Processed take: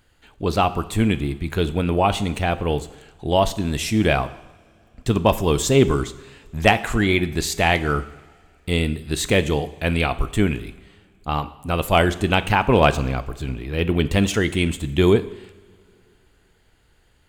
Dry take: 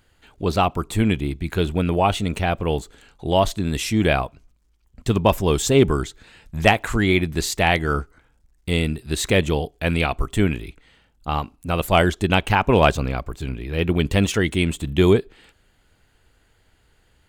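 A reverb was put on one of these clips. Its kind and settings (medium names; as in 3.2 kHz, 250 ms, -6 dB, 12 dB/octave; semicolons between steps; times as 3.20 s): two-slope reverb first 0.81 s, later 2.9 s, from -18 dB, DRR 12.5 dB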